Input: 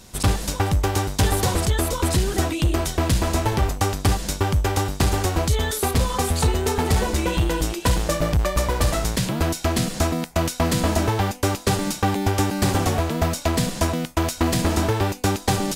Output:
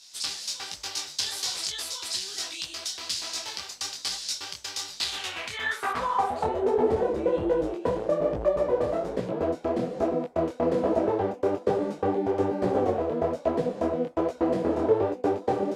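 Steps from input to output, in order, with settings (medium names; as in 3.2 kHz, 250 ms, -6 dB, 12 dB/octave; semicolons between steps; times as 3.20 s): band-pass sweep 4.8 kHz -> 480 Hz, 4.90–6.70 s; detune thickener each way 41 cents; trim +8 dB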